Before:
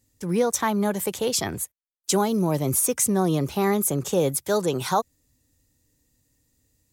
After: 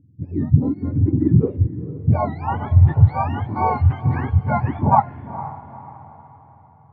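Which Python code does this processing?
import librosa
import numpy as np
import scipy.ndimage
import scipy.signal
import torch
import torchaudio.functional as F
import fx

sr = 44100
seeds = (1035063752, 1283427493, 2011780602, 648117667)

p1 = fx.octave_mirror(x, sr, pivot_hz=940.0)
p2 = fx.over_compress(p1, sr, threshold_db=-22.0, ratio=-1.0)
p3 = p1 + (p2 * 10.0 ** (-1.0 / 20.0))
p4 = scipy.signal.sosfilt(scipy.signal.butter(4, 3900.0, 'lowpass', fs=sr, output='sos'), p3)
p5 = fx.low_shelf(p4, sr, hz=260.0, db=8.5)
p6 = fx.filter_sweep_lowpass(p5, sr, from_hz=290.0, to_hz=850.0, start_s=1.0, end_s=2.54, q=5.8)
p7 = fx.low_shelf(p6, sr, hz=120.0, db=-3.5)
p8 = p7 + fx.echo_diffused(p7, sr, ms=467, feedback_pct=42, wet_db=-14, dry=0)
y = p8 * 10.0 ** (-5.5 / 20.0)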